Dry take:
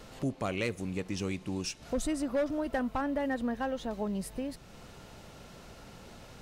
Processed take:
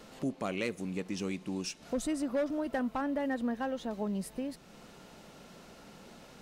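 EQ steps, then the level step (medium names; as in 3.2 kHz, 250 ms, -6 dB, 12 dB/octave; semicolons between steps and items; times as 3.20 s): resonant low shelf 140 Hz -8 dB, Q 1.5; -2.0 dB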